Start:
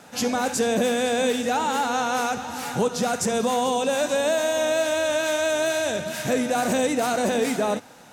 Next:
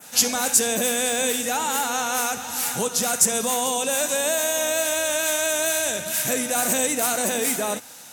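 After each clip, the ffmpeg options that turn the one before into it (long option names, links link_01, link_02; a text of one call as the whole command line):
ffmpeg -i in.wav -af "crystalizer=i=7.5:c=0,adynamicequalizer=threshold=0.0316:dfrequency=4600:dqfactor=1.1:tfrequency=4600:tqfactor=1.1:attack=5:release=100:ratio=0.375:range=3.5:mode=cutabove:tftype=bell,volume=-5dB" out.wav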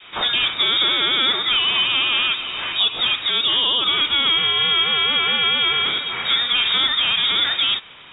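ffmpeg -i in.wav -af "lowpass=frequency=3300:width_type=q:width=0.5098,lowpass=frequency=3300:width_type=q:width=0.6013,lowpass=frequency=3300:width_type=q:width=0.9,lowpass=frequency=3300:width_type=q:width=2.563,afreqshift=-3900,volume=7dB" out.wav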